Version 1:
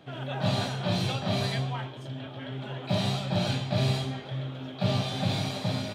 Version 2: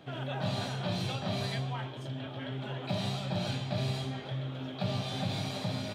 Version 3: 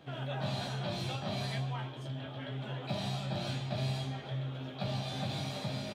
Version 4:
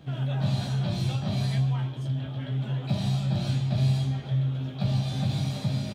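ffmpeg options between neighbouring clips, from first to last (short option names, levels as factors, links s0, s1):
-af "acompressor=threshold=0.02:ratio=2"
-filter_complex "[0:a]asplit=2[s0][s1];[s1]adelay=14,volume=0.447[s2];[s0][s2]amix=inputs=2:normalize=0,volume=0.708"
-af "bass=f=250:g=13,treble=f=4000:g=5"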